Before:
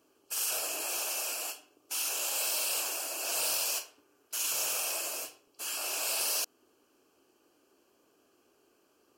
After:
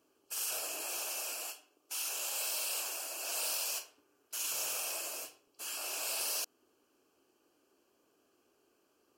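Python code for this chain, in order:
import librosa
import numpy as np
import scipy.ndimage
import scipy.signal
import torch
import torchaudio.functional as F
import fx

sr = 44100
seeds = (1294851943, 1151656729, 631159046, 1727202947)

y = fx.highpass(x, sr, hz=320.0, slope=6, at=(1.44, 3.8))
y = y * 10.0 ** (-4.5 / 20.0)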